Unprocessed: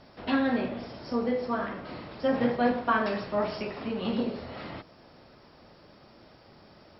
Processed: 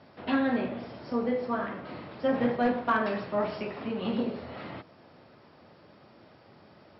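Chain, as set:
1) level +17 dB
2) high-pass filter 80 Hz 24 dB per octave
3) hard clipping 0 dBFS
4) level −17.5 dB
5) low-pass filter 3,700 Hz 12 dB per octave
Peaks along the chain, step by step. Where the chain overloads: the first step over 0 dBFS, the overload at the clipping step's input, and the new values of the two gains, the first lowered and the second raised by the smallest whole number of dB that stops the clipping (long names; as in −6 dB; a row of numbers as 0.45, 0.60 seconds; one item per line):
+4.0, +5.5, 0.0, −17.5, −17.0 dBFS
step 1, 5.5 dB
step 1 +11 dB, step 4 −11.5 dB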